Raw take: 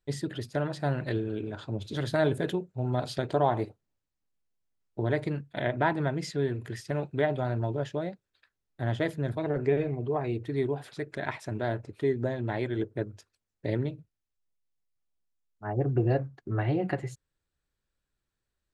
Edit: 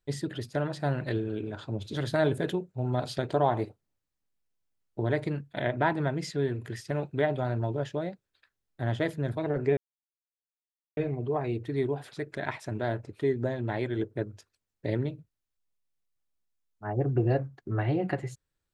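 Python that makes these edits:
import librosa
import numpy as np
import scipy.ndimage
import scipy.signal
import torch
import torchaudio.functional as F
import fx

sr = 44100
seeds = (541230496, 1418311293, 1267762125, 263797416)

y = fx.edit(x, sr, fx.insert_silence(at_s=9.77, length_s=1.2), tone=tone)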